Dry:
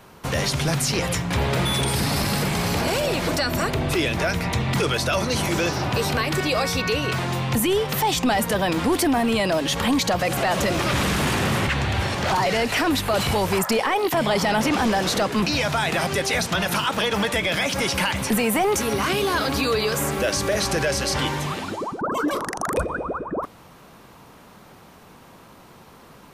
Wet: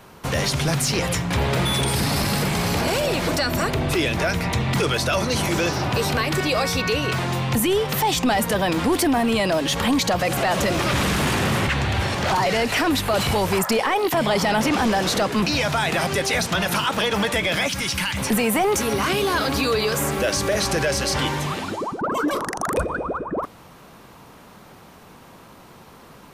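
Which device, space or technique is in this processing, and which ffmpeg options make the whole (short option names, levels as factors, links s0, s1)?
parallel distortion: -filter_complex "[0:a]asplit=2[s0][s1];[s1]asoftclip=type=hard:threshold=0.0562,volume=0.2[s2];[s0][s2]amix=inputs=2:normalize=0,asettb=1/sr,asplit=3[s3][s4][s5];[s3]atrim=end=17.684[s6];[s4]atrim=start=17.68:end=18.17,asetpts=PTS-STARTPTS,afade=t=in:d=0.004:c=qsin,afade=t=out:st=0.486:d=0.004:c=qsin,equalizer=f=550:w=0.74:g=-12.5[s7];[s5]atrim=start=18.166[s8];[s6][s7]acrossfade=d=0.004:c1=hsin:c2=qsin[s9];[s9][s8]acrossfade=d=0.004:c1=qsin:c2=hsin"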